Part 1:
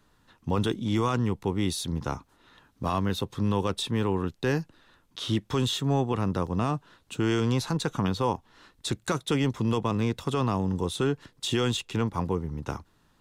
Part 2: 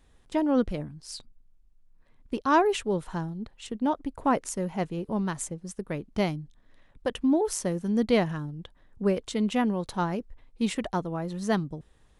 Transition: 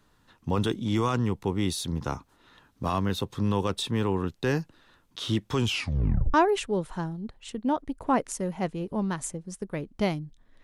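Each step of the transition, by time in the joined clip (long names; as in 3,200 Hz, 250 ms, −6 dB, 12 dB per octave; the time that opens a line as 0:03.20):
part 1
0:05.58: tape stop 0.76 s
0:06.34: continue with part 2 from 0:02.51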